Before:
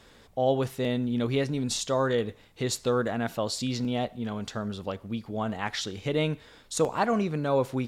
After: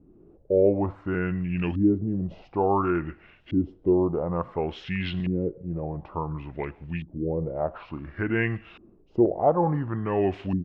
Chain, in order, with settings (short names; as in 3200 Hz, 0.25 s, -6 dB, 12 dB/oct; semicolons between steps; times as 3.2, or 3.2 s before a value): LFO low-pass saw up 0.77 Hz 360–4500 Hz; varispeed -26%